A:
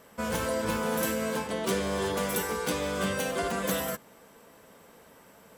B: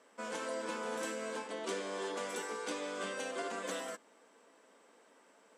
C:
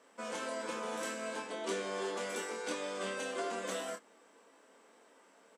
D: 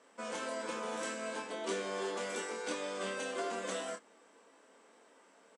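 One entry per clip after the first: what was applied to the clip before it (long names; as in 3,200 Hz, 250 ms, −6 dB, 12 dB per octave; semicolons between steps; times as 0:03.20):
elliptic band-pass filter 270–8,300 Hz, stop band 60 dB; level −8 dB
double-tracking delay 26 ms −5 dB
downsampling to 22,050 Hz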